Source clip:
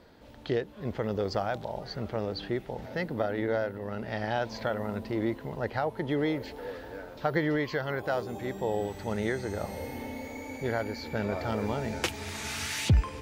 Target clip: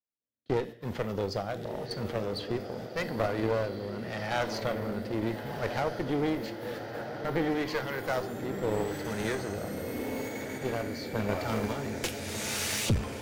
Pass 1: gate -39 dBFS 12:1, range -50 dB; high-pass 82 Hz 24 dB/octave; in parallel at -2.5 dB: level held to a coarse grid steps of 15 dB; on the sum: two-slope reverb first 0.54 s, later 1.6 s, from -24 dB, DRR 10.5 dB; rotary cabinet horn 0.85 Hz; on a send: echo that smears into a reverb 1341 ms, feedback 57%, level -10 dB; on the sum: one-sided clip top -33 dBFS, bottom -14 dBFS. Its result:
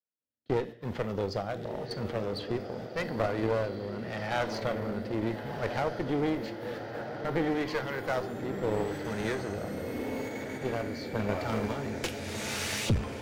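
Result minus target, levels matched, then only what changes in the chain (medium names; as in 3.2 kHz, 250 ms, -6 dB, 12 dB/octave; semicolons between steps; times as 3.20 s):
8 kHz band -4.0 dB
add after high-pass: treble shelf 6.6 kHz +9.5 dB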